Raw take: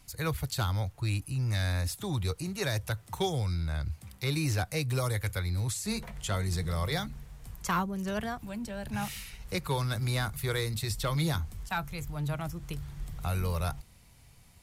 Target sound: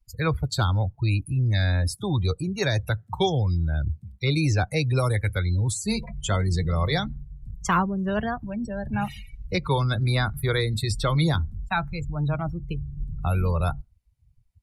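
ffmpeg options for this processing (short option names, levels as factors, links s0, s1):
-af "afftdn=nr=35:nf=-39,volume=2.37"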